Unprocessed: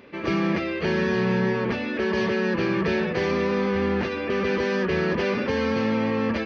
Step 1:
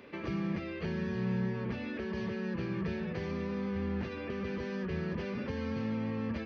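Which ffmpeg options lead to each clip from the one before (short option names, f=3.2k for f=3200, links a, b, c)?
-filter_complex "[0:a]acrossover=split=190[a][b];[b]acompressor=threshold=-35dB:ratio=6[c];[a][c]amix=inputs=2:normalize=0,volume=-4dB"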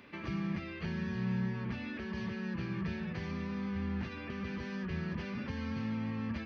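-af "equalizer=f=470:w=1.5:g=-10"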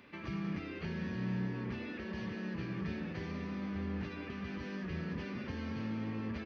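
-filter_complex "[0:a]asplit=7[a][b][c][d][e][f][g];[b]adelay=193,afreqshift=100,volume=-10.5dB[h];[c]adelay=386,afreqshift=200,volume=-16dB[i];[d]adelay=579,afreqshift=300,volume=-21.5dB[j];[e]adelay=772,afreqshift=400,volume=-27dB[k];[f]adelay=965,afreqshift=500,volume=-32.6dB[l];[g]adelay=1158,afreqshift=600,volume=-38.1dB[m];[a][h][i][j][k][l][m]amix=inputs=7:normalize=0,volume=-2.5dB"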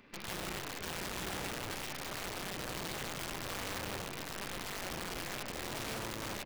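-filter_complex "[0:a]aeval=exprs='0.0501*(cos(1*acos(clip(val(0)/0.0501,-1,1)))-cos(1*PI/2))+0.0126*(cos(8*acos(clip(val(0)/0.0501,-1,1)))-cos(8*PI/2))':c=same,asplit=6[a][b][c][d][e][f];[b]adelay=103,afreqshift=140,volume=-13dB[g];[c]adelay=206,afreqshift=280,volume=-18.8dB[h];[d]adelay=309,afreqshift=420,volume=-24.7dB[i];[e]adelay=412,afreqshift=560,volume=-30.5dB[j];[f]adelay=515,afreqshift=700,volume=-36.4dB[k];[a][g][h][i][j][k]amix=inputs=6:normalize=0,aeval=exprs='(mod(33.5*val(0)+1,2)-1)/33.5':c=same,volume=-2.5dB"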